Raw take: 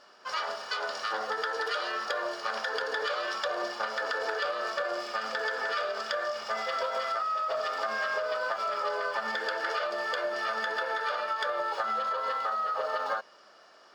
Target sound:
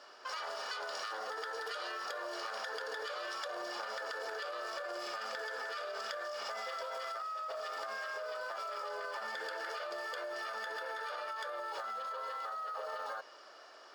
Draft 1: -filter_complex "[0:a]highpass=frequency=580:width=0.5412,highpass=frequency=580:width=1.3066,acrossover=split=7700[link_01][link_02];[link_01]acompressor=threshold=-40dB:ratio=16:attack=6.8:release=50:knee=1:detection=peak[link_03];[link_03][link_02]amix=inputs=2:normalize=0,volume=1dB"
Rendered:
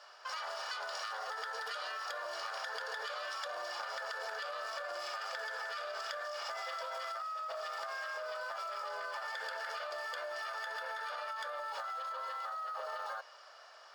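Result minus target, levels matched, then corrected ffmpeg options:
250 Hz band −14.5 dB
-filter_complex "[0:a]highpass=frequency=280:width=0.5412,highpass=frequency=280:width=1.3066,acrossover=split=7700[link_01][link_02];[link_01]acompressor=threshold=-40dB:ratio=16:attack=6.8:release=50:knee=1:detection=peak[link_03];[link_03][link_02]amix=inputs=2:normalize=0,volume=1dB"

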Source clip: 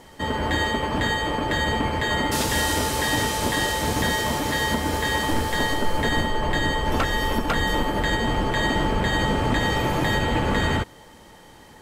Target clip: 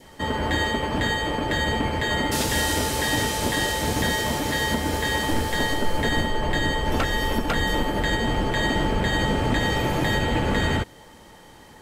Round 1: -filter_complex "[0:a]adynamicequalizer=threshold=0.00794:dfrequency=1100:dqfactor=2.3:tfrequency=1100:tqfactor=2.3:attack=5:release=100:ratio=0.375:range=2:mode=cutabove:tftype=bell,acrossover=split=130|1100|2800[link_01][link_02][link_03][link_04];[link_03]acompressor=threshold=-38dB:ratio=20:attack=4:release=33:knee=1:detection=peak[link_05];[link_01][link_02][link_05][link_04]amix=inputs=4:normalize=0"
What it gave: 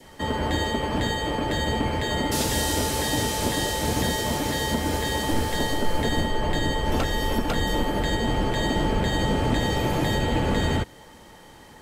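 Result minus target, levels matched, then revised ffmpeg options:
downward compressor: peak gain reduction +12.5 dB
-af "adynamicequalizer=threshold=0.00794:dfrequency=1100:dqfactor=2.3:tfrequency=1100:tqfactor=2.3:attack=5:release=100:ratio=0.375:range=2:mode=cutabove:tftype=bell"

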